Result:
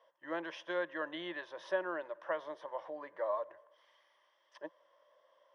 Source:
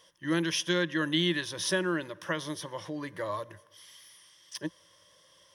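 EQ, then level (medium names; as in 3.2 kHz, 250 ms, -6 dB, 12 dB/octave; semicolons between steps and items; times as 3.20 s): ladder band-pass 780 Hz, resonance 50%; +8.0 dB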